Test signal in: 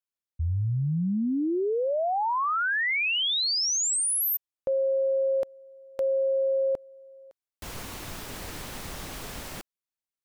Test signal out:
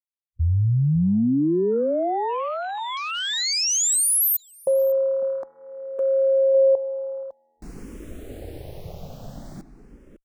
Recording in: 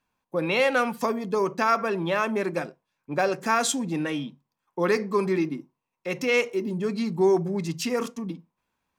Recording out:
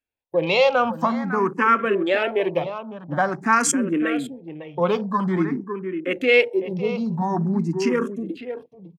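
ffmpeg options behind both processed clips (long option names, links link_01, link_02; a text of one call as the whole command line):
ffmpeg -i in.wav -filter_complex "[0:a]afwtdn=0.0141,asplit=2[link_01][link_02];[link_02]adelay=553.9,volume=-10dB,highshelf=frequency=4000:gain=-12.5[link_03];[link_01][link_03]amix=inputs=2:normalize=0,asplit=2[link_04][link_05];[link_05]afreqshift=0.48[link_06];[link_04][link_06]amix=inputs=2:normalize=1,volume=7dB" out.wav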